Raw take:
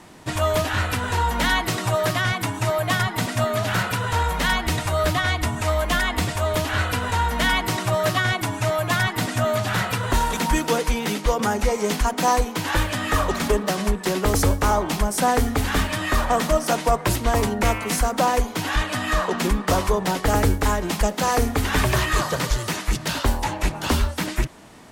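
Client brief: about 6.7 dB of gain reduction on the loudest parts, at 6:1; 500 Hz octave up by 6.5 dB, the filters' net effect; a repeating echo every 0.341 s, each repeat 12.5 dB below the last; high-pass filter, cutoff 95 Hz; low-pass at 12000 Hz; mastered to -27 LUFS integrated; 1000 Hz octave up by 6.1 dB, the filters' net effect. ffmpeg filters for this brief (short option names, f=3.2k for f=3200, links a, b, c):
-af "highpass=95,lowpass=12k,equalizer=f=500:t=o:g=6.5,equalizer=f=1k:t=o:g=5.5,acompressor=threshold=-17dB:ratio=6,aecho=1:1:341|682|1023:0.237|0.0569|0.0137,volume=-5dB"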